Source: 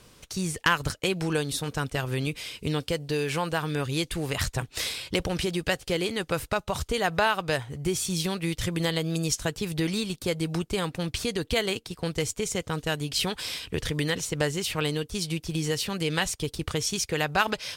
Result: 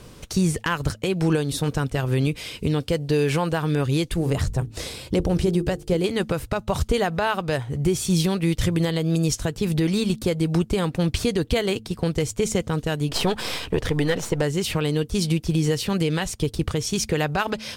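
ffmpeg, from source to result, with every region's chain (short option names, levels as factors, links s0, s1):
-filter_complex "[0:a]asettb=1/sr,asplit=3[s0][s1][s2];[s0]atrim=end=4.144[s3];[s1]atrim=start=4.14:end=6.04,asetpts=PTS-STARTPTS,afade=t=in:d=0.004:c=qsin,afade=t=out:st=1.896:d=0.004:c=qsin,acrossover=split=9200[s4][s5];[s5]acompressor=threshold=0.00282:ratio=4:attack=1:release=60[s6];[s4][s6]amix=inputs=2:normalize=0,equalizer=f=2500:w=0.43:g=-9,bandreject=f=50:t=h:w=6,bandreject=f=100:t=h:w=6,bandreject=f=150:t=h:w=6,bandreject=f=200:t=h:w=6,bandreject=f=250:t=h:w=6,bandreject=f=300:t=h:w=6,bandreject=f=350:t=h:w=6,bandreject=f=400:t=h:w=6,bandreject=f=450:t=h:w=6[s7];[s2]atrim=start=6.036[s8];[s3][s7]acrossfade=d=0.004:c1=hsin:c2=qsin[s9];[s9][s8]acrossfade=d=0.004:c1=qsin:c2=hsin,asettb=1/sr,asplit=3[s10][s11][s12];[s10]atrim=end=13.094[s13];[s11]atrim=start=13.09:end=14.42,asetpts=PTS-STARTPTS,afade=t=in:d=0.004:c=qsin,afade=t=out:st=1.326:d=0.004:c=qsin,aeval=exprs='if(lt(val(0),0),0.447*val(0),val(0))':c=same,equalizer=f=790:w=0.42:g=7.5[s14];[s12]atrim=start=14.416[s15];[s13][s14]acrossfade=d=0.004:c1=hsin:c2=qsin[s16];[s16][s15]acrossfade=d=0.004:c1=qsin:c2=hsin,tiltshelf=f=790:g=4,bandreject=f=109.2:t=h:w=4,bandreject=f=218.4:t=h:w=4,alimiter=limit=0.106:level=0:latency=1:release=426,volume=2.66"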